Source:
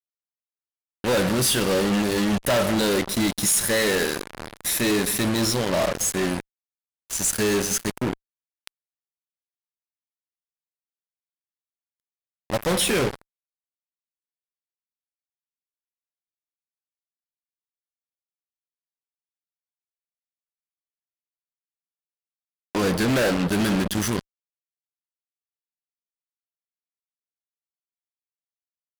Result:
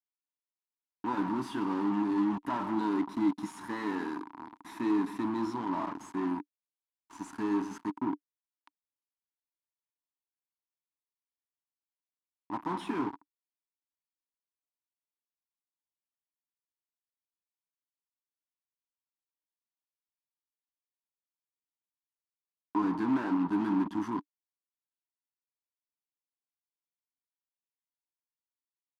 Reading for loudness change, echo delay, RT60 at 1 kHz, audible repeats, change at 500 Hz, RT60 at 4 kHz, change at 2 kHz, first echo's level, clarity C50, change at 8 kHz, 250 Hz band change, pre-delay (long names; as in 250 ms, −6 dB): −10.0 dB, no echo audible, no reverb audible, no echo audible, −16.0 dB, no reverb audible, −16.5 dB, no echo audible, no reverb audible, below −30 dB, −5.0 dB, no reverb audible